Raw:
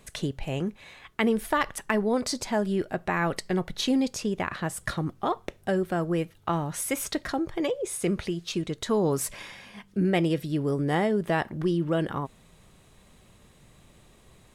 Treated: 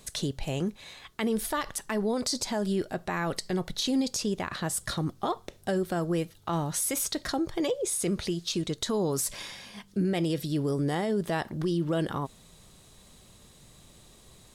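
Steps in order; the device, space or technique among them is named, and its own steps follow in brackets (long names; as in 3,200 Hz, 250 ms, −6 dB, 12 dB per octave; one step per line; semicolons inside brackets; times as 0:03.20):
over-bright horn tweeter (high shelf with overshoot 3,200 Hz +6 dB, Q 1.5; brickwall limiter −19.5 dBFS, peak gain reduction 9 dB)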